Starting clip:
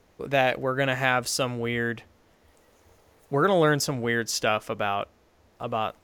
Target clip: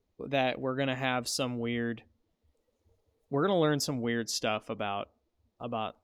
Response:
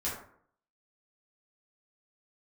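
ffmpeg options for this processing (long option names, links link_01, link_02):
-af "afftdn=noise_reduction=16:noise_floor=-48,equalizer=frequency=250:width_type=o:width=0.67:gain=6,equalizer=frequency=1600:width_type=o:width=0.67:gain=-5,equalizer=frequency=4000:width_type=o:width=0.67:gain=5,volume=-6.5dB"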